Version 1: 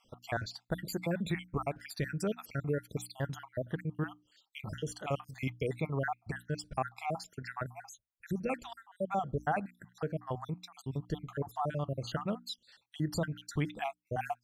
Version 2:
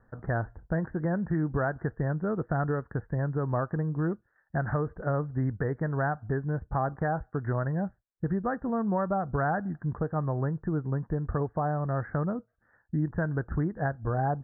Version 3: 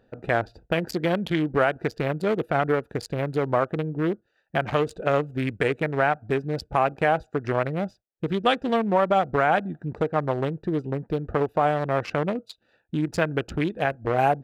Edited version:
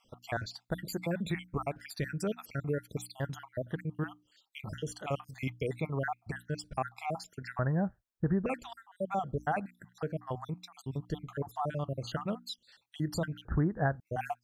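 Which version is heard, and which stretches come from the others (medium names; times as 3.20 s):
1
7.59–8.46 s: from 2
13.45–14.00 s: from 2
not used: 3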